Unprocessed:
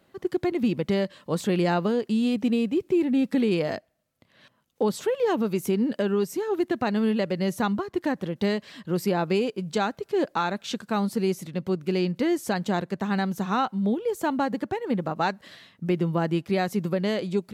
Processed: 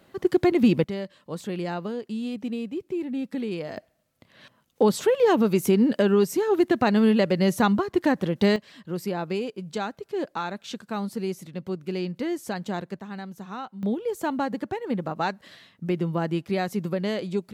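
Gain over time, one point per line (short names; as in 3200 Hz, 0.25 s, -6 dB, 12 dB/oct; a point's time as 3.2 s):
+5.5 dB
from 0.84 s -7 dB
from 3.77 s +4.5 dB
from 8.56 s -4.5 dB
from 12.99 s -11 dB
from 13.83 s -1.5 dB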